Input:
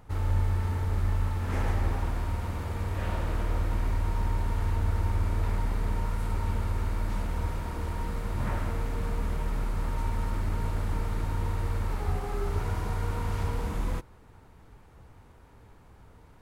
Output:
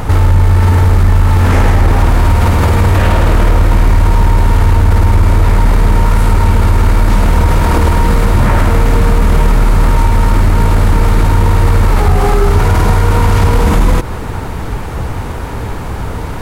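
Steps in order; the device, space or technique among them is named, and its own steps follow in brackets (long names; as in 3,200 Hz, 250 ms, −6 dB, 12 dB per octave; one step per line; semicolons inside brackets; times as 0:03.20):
loud club master (downward compressor 2 to 1, threshold −32 dBFS, peak gain reduction 6.5 dB; hard clipping −26 dBFS, distortion −25 dB; boost into a limiter +35 dB)
level −1 dB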